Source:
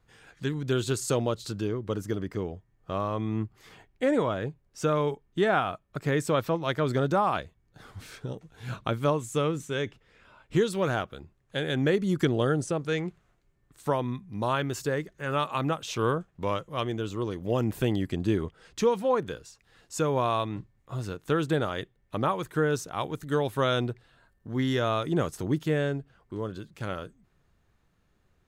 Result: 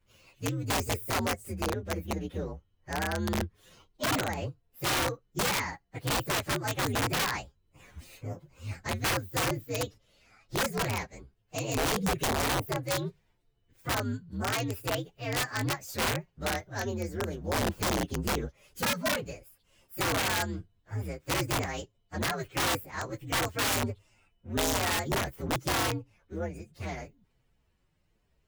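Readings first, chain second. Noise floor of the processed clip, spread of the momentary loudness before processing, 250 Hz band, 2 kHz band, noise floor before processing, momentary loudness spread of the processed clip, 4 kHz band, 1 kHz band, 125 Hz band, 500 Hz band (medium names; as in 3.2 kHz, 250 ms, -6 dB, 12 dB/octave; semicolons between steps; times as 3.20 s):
-72 dBFS, 12 LU, -5.5 dB, +3.0 dB, -69 dBFS, 12 LU, +4.5 dB, -2.0 dB, -4.0 dB, -7.0 dB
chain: frequency axis rescaled in octaves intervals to 126%; integer overflow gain 22.5 dB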